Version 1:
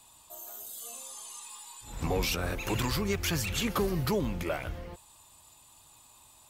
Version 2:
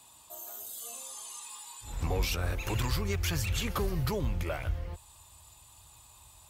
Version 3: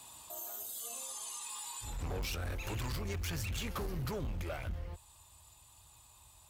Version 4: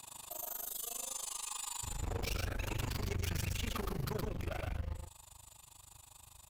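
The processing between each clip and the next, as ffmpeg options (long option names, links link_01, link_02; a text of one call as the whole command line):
ffmpeg -i in.wav -filter_complex "[0:a]highpass=57,asubboost=boost=8:cutoff=80,asplit=2[link_01][link_02];[link_02]acompressor=threshold=-38dB:ratio=6,volume=-2.5dB[link_03];[link_01][link_03]amix=inputs=2:normalize=0,volume=-4dB" out.wav
ffmpeg -i in.wav -af "volume=29.5dB,asoftclip=hard,volume=-29.5dB,alimiter=level_in=13.5dB:limit=-24dB:level=0:latency=1:release=49,volume=-13.5dB,volume=3.5dB" out.wav
ffmpeg -i in.wav -af "tremolo=f=25:d=0.974,aeval=exprs='(tanh(89.1*val(0)+0.15)-tanh(0.15))/89.1':channel_layout=same,aecho=1:1:116:0.668,volume=5.5dB" out.wav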